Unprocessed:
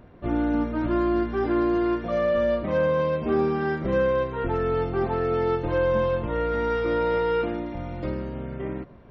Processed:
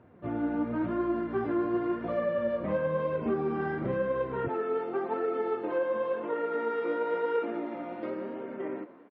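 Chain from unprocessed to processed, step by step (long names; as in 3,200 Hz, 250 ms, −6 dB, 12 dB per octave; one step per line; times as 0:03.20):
automatic gain control gain up to 4.5 dB
echo with shifted repeats 193 ms, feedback 63%, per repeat −52 Hz, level −20.5 dB
downward compressor, threshold −21 dBFS, peak gain reduction 7.5 dB
high-pass filter 82 Hz 24 dB per octave, from 0:04.48 250 Hz
flanger 0.95 Hz, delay 1.9 ms, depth 9.9 ms, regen +48%
low-pass filter 2,400 Hz 12 dB per octave
level −1.5 dB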